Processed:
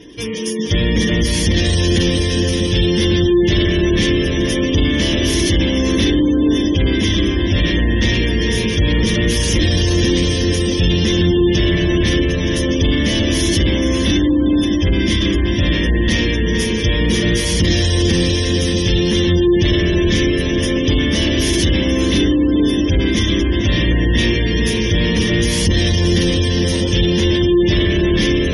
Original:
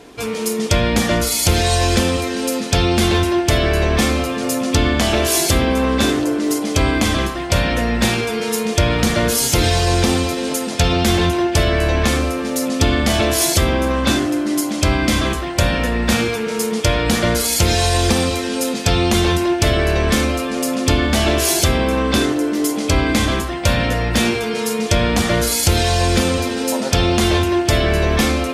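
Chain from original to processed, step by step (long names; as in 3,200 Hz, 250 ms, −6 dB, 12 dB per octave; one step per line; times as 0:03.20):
variable-slope delta modulation 64 kbit/s
EQ curve with evenly spaced ripples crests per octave 1.2, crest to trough 8 dB
soft clipping −10.5 dBFS, distortion −17 dB
on a send: feedback delay with all-pass diffusion 510 ms, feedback 54%, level −3.5 dB
on the sum: hard clipping −13 dBFS, distortion −15 dB
gate on every frequency bin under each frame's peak −25 dB strong
flat-topped bell 930 Hz −14.5 dB
level +4 dB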